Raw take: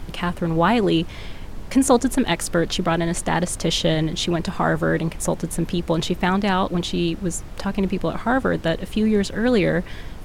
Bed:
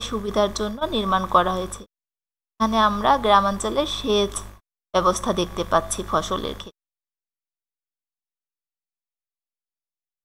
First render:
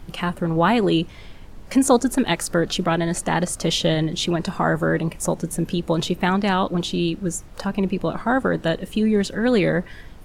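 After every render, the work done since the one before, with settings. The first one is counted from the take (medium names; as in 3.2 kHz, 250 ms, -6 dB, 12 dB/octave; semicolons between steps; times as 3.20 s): noise print and reduce 7 dB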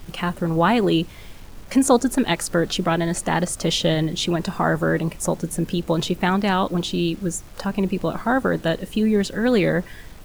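bit crusher 8-bit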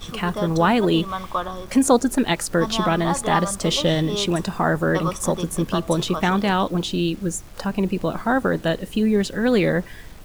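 add bed -8 dB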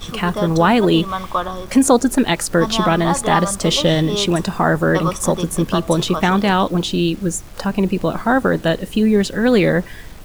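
trim +4.5 dB; peak limiter -3 dBFS, peak gain reduction 2 dB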